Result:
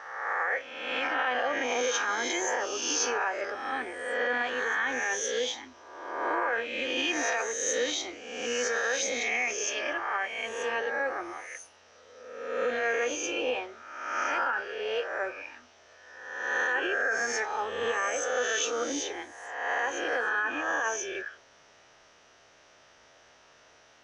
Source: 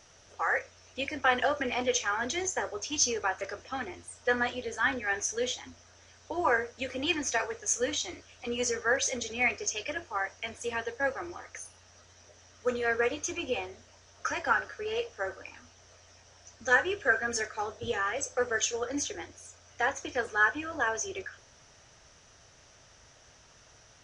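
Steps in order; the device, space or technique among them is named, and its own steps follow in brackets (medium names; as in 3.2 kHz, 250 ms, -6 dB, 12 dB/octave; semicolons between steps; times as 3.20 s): reverse spectral sustain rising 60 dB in 1.15 s; DJ mixer with the lows and highs turned down (three-band isolator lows -16 dB, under 240 Hz, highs -13 dB, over 4.4 kHz; peak limiter -20 dBFS, peak gain reduction 11 dB); dynamic bell 6.2 kHz, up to +5 dB, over -53 dBFS, Q 4.8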